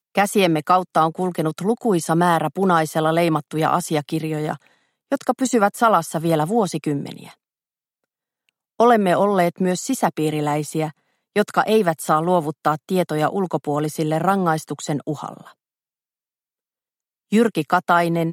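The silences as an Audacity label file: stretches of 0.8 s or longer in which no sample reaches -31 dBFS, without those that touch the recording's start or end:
7.290000	8.800000	silence
15.470000	17.320000	silence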